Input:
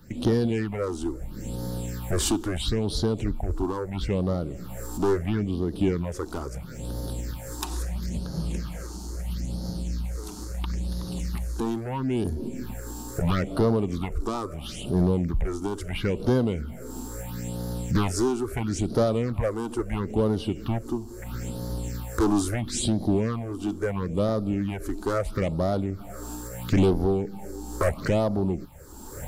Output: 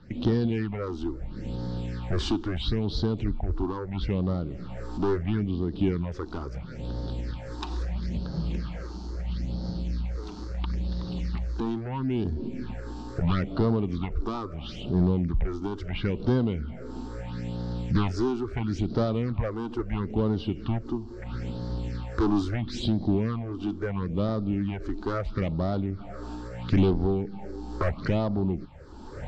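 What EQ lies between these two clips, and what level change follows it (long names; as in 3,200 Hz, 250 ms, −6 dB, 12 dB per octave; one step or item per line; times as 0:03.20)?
inverse Chebyshev low-pass filter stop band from 12,000 Hz, stop band 60 dB
dynamic equaliser 550 Hz, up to −6 dB, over −40 dBFS, Q 1.4
dynamic equaliser 2,100 Hz, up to −3 dB, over −46 dBFS, Q 0.88
0.0 dB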